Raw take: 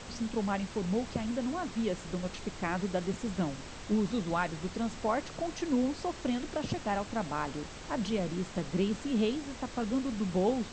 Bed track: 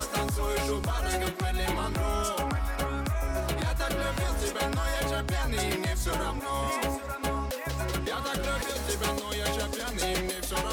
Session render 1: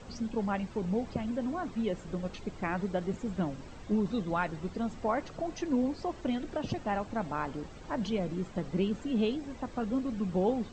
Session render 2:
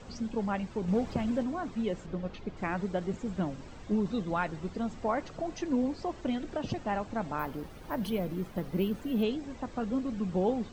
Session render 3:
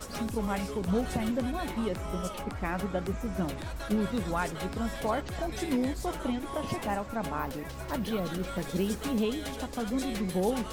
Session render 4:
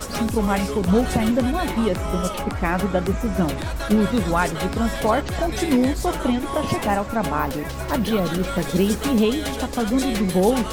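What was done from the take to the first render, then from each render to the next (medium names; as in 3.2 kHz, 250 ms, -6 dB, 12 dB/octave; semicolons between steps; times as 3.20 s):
noise reduction 11 dB, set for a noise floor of -45 dBFS
0.88–1.43 s: waveshaping leveller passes 1; 2.06–2.57 s: distance through air 130 m; 7.39–9.23 s: careless resampling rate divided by 3×, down filtered, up hold
add bed track -9 dB
trim +10.5 dB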